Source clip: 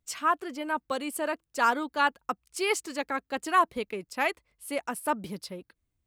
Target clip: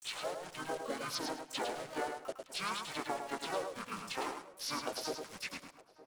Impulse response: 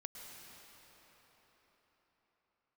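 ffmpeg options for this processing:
-filter_complex "[0:a]dynaudnorm=f=110:g=13:m=9.5dB,highpass=930,acompressor=threshold=-32dB:ratio=8,asplit=2[a][b];[b]adelay=17,volume=-10.5dB[c];[a][c]amix=inputs=2:normalize=0,acrusher=bits=6:mix=0:aa=0.000001,asetrate=22696,aresample=44100,atempo=1.94306,asplit=2[d][e];[e]adelay=912,lowpass=f=1.5k:p=1,volume=-19.5dB,asplit=2[f][g];[g]adelay=912,lowpass=f=1.5k:p=1,volume=0.37,asplit=2[h][i];[i]adelay=912,lowpass=f=1.5k:p=1,volume=0.37[j];[f][h][j]amix=inputs=3:normalize=0[k];[d][k]amix=inputs=2:normalize=0,asplit=4[l][m][n][o];[m]asetrate=29433,aresample=44100,atempo=1.49831,volume=-18dB[p];[n]asetrate=37084,aresample=44100,atempo=1.18921,volume=-4dB[q];[o]asetrate=88200,aresample=44100,atempo=0.5,volume=-8dB[r];[l][p][q][r]amix=inputs=4:normalize=0,asplit=2[s][t];[t]aecho=0:1:105|210|315:0.501|0.105|0.0221[u];[s][u]amix=inputs=2:normalize=0,volume=-6dB"

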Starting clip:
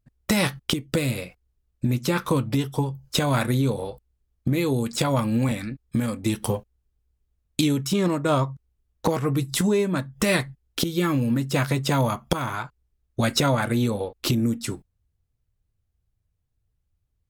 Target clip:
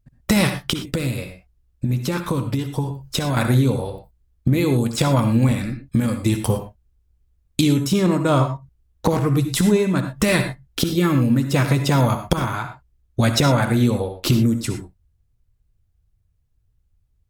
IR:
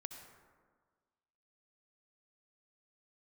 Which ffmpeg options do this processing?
-filter_complex "[0:a]lowshelf=f=140:g=7.5,asettb=1/sr,asplit=3[a][b][c];[a]atrim=end=0.704[d];[b]atrim=start=0.7:end=3.37,asetpts=PTS-STARTPTS,afade=t=in:d=0.004:c=qsin,afade=t=out:st=2.666:d=0.004:c=qsin,acompressor=threshold=-25dB:ratio=2[e];[c]atrim=start=3.366[f];[d][e]acrossfade=d=0.004:c1=hsin:c2=qsin[g];[g][f]acrossfade=d=0.004:c1=qsin:c2=hsin[h];[1:a]atrim=start_sample=2205,atrim=end_sample=6174,asetrate=48510,aresample=44100[i];[h][i]afir=irnorm=-1:irlink=0,volume=8dB"

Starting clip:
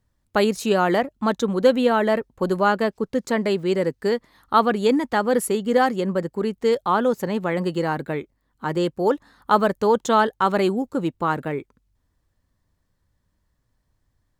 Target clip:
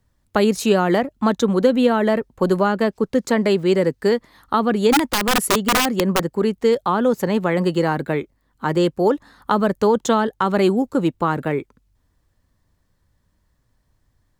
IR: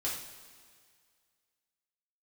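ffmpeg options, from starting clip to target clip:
-filter_complex "[0:a]acrossover=split=350[a][b];[b]acompressor=threshold=-21dB:ratio=8[c];[a][c]amix=inputs=2:normalize=0,asplit=3[d][e][f];[d]afade=t=out:st=4.92:d=0.02[g];[e]aeval=exprs='(mod(6.31*val(0)+1,2)-1)/6.31':c=same,afade=t=in:st=4.92:d=0.02,afade=t=out:st=6.37:d=0.02[h];[f]afade=t=in:st=6.37:d=0.02[i];[g][h][i]amix=inputs=3:normalize=0,volume=5dB"

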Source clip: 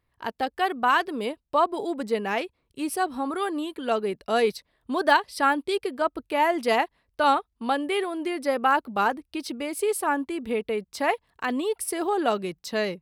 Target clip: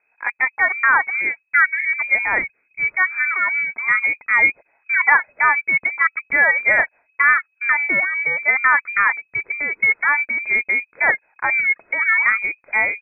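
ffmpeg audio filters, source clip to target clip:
-filter_complex "[0:a]lowpass=f=2.2k:t=q:w=0.5098,lowpass=f=2.2k:t=q:w=0.6013,lowpass=f=2.2k:t=q:w=0.9,lowpass=f=2.2k:t=q:w=2.563,afreqshift=-2600,asplit=2[a][b];[b]alimiter=limit=-15dB:level=0:latency=1:release=145,volume=0dB[c];[a][c]amix=inputs=2:normalize=0,volume=2dB"

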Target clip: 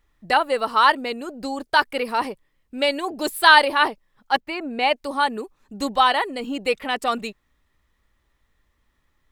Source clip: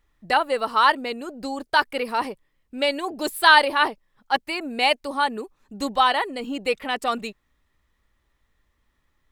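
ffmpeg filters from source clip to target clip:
-filter_complex "[0:a]asettb=1/sr,asplit=3[a][b][c];[a]atrim=end=4.404[d];[b]atrim=start=4.4:end=4.96,asetpts=PTS-STARTPTS,afade=t=in:d=0.004:c=qsin,afade=t=out:st=0.556:d=0.004:c=qsin,equalizer=f=11k:w=0.34:g=-13.5[e];[c]atrim=start=4.956[f];[d][e]acrossfade=d=0.004:c1=hsin:c2=qsin[g];[g][f]acrossfade=d=0.004:c1=qsin:c2=hsin,volume=1.5dB"

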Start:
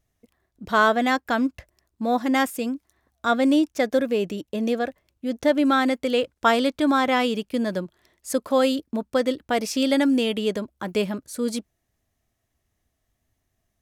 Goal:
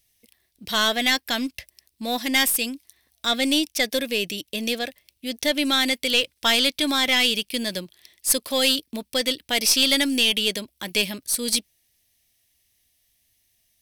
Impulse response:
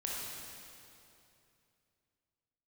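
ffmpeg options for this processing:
-af "equalizer=f=7k:w=4.1:g=-9.5,aexciter=amount=6.7:drive=6.5:freq=2k,aeval=exprs='(tanh(1.41*val(0)+0.3)-tanh(0.3))/1.41':c=same,volume=-4dB"

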